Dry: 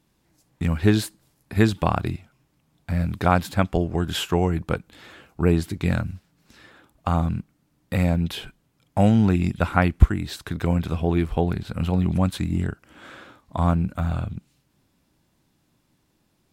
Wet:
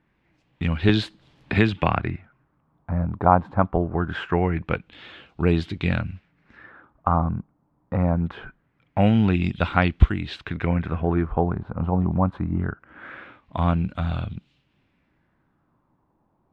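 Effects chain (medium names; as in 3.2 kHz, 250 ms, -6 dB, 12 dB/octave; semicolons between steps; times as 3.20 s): LFO low-pass sine 0.23 Hz 960–3500 Hz; 0.89–2.00 s: three bands compressed up and down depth 70%; trim -1 dB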